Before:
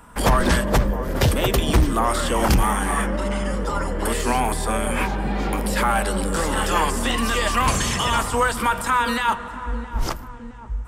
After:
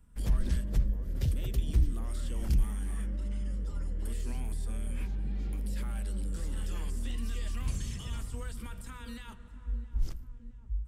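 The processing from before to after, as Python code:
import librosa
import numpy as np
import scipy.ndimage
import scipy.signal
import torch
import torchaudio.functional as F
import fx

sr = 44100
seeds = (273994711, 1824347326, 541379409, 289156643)

y = fx.tone_stack(x, sr, knobs='10-0-1')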